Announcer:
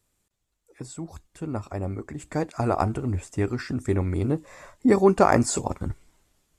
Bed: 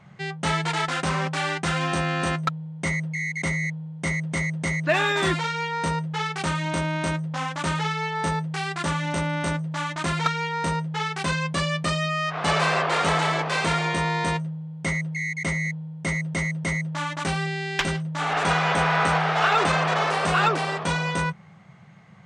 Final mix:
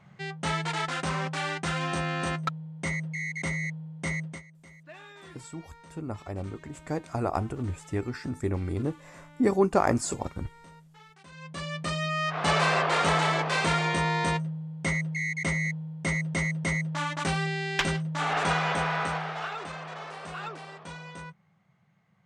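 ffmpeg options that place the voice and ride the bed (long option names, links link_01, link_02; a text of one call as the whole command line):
ffmpeg -i stem1.wav -i stem2.wav -filter_complex "[0:a]adelay=4550,volume=-5dB[link_01];[1:a]volume=19dB,afade=type=out:start_time=4.2:duration=0.22:silence=0.0891251,afade=type=in:start_time=11.31:duration=0.99:silence=0.0630957,afade=type=out:start_time=18.16:duration=1.42:silence=0.177828[link_02];[link_01][link_02]amix=inputs=2:normalize=0" out.wav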